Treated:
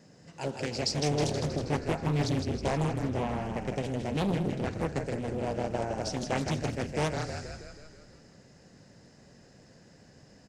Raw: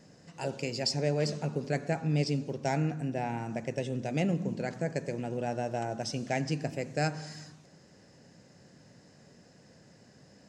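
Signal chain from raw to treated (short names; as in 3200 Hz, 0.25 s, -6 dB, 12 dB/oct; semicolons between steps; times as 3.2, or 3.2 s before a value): HPF 44 Hz; frequency-shifting echo 0.159 s, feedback 59%, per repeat -31 Hz, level -5.5 dB; Doppler distortion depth 0.93 ms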